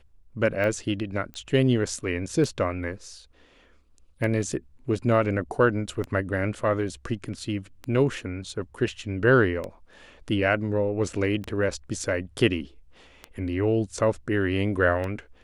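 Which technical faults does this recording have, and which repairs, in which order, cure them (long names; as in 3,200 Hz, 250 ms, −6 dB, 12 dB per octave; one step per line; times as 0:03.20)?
scratch tick 33 1/3 rpm −19 dBFS
0:01.34: click −26 dBFS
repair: click removal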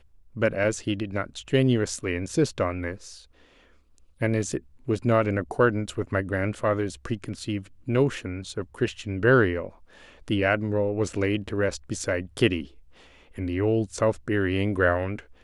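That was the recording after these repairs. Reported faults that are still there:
none of them is left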